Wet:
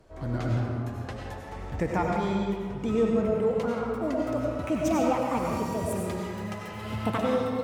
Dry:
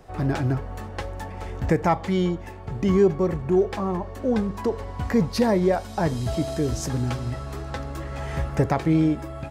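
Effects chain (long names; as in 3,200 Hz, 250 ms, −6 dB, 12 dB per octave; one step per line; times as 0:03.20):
gliding playback speed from 85% → 164%
comb and all-pass reverb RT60 1.7 s, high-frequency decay 0.65×, pre-delay 55 ms, DRR −1.5 dB
level −8 dB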